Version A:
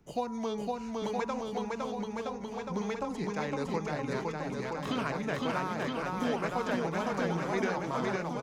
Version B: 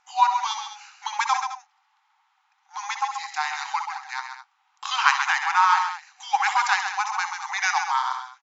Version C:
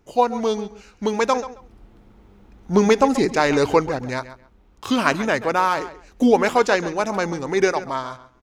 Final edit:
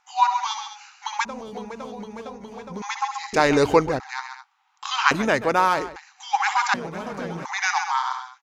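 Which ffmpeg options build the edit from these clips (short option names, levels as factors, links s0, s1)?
-filter_complex "[0:a]asplit=2[s0][s1];[2:a]asplit=2[s2][s3];[1:a]asplit=5[s4][s5][s6][s7][s8];[s4]atrim=end=1.252[s9];[s0]atrim=start=1.248:end=2.822[s10];[s5]atrim=start=2.818:end=3.332[s11];[s2]atrim=start=3.328:end=4.002[s12];[s6]atrim=start=3.998:end=5.112[s13];[s3]atrim=start=5.108:end=5.962[s14];[s7]atrim=start=5.958:end=6.742[s15];[s1]atrim=start=6.738:end=7.452[s16];[s8]atrim=start=7.448[s17];[s9][s10]acrossfade=d=0.004:c1=hsin:c2=hsin[s18];[s18][s11]acrossfade=d=0.004:c1=hsin:c2=hsin[s19];[s19][s12]acrossfade=d=0.004:c1=hsin:c2=hsin[s20];[s20][s13]acrossfade=d=0.004:c1=hsin:c2=hsin[s21];[s21][s14]acrossfade=d=0.004:c1=hsin:c2=hsin[s22];[s22][s15]acrossfade=d=0.004:c1=hsin:c2=hsin[s23];[s23][s16]acrossfade=d=0.004:c1=hsin:c2=hsin[s24];[s24][s17]acrossfade=d=0.004:c1=hsin:c2=hsin"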